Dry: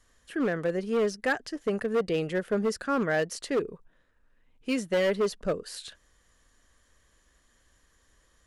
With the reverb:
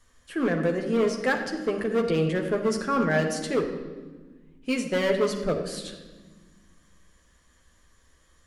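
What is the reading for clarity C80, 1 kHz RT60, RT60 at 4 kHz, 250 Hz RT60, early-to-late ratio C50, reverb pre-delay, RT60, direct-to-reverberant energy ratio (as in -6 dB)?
9.0 dB, 1.2 s, 1.0 s, 2.5 s, 7.0 dB, 12 ms, 1.4 s, 2.0 dB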